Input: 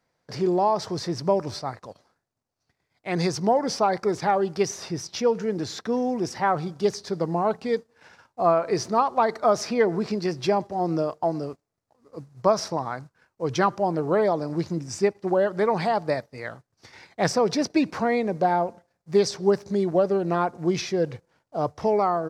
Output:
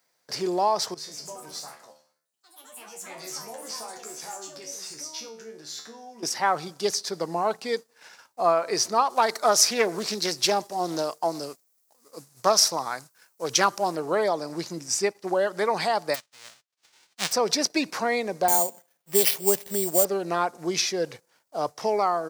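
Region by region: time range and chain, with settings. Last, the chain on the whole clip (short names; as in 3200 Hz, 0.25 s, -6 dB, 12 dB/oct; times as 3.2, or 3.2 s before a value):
0.94–6.23 compressor 2.5:1, threshold -30 dBFS + resonator 75 Hz, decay 0.42 s, mix 90% + echoes that change speed 0.146 s, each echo +4 st, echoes 3, each echo -6 dB
9.1–13.96 high shelf 5300 Hz +11 dB + Doppler distortion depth 0.27 ms
16.14–17.31 spectral whitening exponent 0.1 + air absorption 130 m + upward expander, over -36 dBFS
18.48–20.05 sample-rate reducer 7800 Hz + dynamic EQ 1400 Hz, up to -7 dB, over -42 dBFS, Q 1.6
whole clip: HPF 110 Hz; RIAA curve recording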